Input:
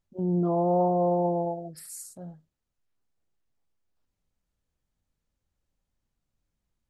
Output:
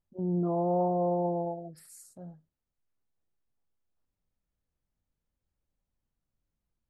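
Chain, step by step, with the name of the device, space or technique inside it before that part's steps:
behind a face mask (high-shelf EQ 2,300 Hz −7.5 dB)
level −3.5 dB

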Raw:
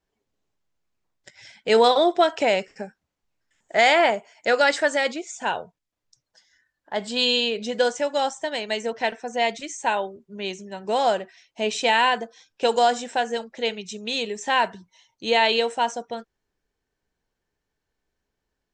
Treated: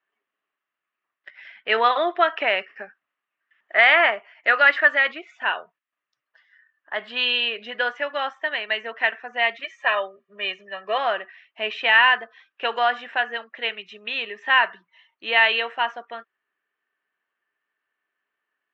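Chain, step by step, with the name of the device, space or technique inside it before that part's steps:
0:09.64–0:10.98: comb filter 1.7 ms, depth 95%
phone earpiece (loudspeaker in its box 490–3,000 Hz, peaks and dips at 490 Hz −7 dB, 850 Hz −6 dB, 1,200 Hz +10 dB, 1,800 Hz +9 dB, 2,800 Hz +6 dB)

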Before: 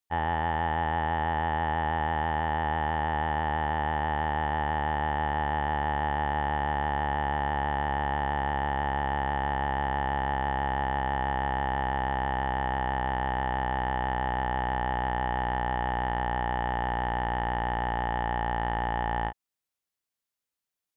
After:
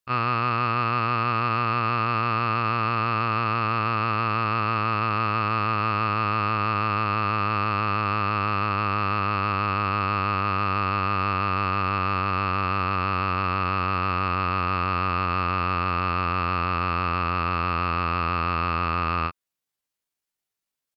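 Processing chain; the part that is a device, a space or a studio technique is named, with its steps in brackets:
chipmunk voice (pitch shifter +6.5 semitones)
level +4 dB

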